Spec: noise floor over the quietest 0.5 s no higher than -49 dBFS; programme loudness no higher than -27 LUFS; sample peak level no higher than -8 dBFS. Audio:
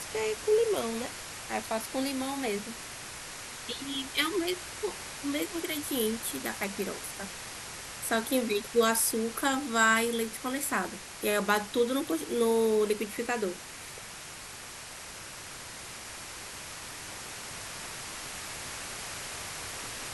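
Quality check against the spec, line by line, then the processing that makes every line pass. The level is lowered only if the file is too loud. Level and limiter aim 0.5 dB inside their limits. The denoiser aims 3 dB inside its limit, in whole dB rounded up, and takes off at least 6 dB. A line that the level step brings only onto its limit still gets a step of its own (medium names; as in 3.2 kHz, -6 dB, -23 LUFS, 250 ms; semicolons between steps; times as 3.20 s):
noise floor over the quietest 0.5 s -44 dBFS: fail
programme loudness -31.5 LUFS: pass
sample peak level -11.5 dBFS: pass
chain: noise reduction 8 dB, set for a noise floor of -44 dBFS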